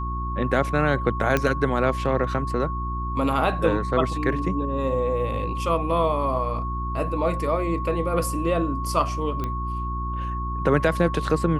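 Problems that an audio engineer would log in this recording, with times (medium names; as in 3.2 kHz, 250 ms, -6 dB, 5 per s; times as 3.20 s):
hum 60 Hz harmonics 6 -29 dBFS
whine 1.1 kHz -30 dBFS
1.37 s: pop -8 dBFS
9.44 s: pop -16 dBFS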